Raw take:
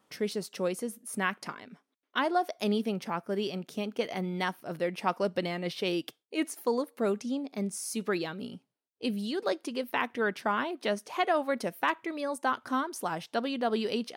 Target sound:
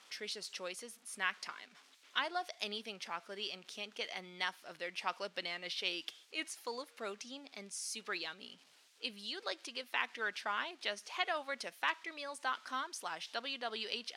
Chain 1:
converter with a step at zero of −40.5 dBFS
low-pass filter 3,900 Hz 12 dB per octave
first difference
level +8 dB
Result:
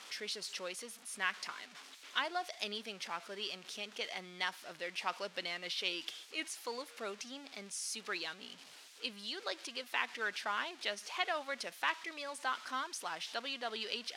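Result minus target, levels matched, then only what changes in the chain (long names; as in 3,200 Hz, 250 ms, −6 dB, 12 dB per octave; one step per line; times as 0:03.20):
converter with a step at zero: distortion +9 dB
change: converter with a step at zero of −50.5 dBFS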